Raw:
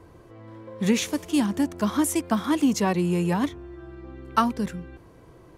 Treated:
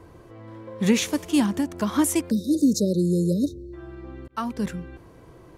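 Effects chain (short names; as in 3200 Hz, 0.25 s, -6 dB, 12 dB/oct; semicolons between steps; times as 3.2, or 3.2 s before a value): 1.48–1.97 compressor 4:1, threshold -23 dBFS, peak gain reduction 4.5 dB; 2.3–3.73 spectral delete 610–3600 Hz; 4.28–4.68 fade in linear; gain +2 dB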